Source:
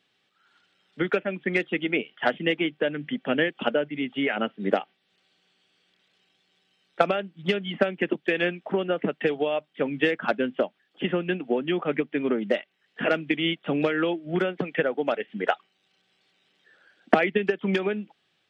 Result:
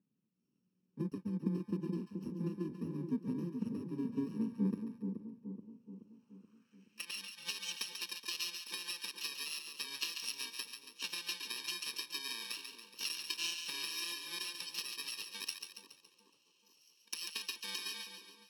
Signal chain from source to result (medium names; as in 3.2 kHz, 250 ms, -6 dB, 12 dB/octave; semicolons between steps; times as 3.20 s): bit-reversed sample order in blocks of 64 samples; compression 6:1, threshold -27 dBFS, peak gain reduction 15 dB; band-pass sweep 200 Hz -> 3.5 kHz, 5.33–7.21 s; on a send: two-band feedback delay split 950 Hz, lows 427 ms, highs 140 ms, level -6.5 dB; on the sum: trim +4 dB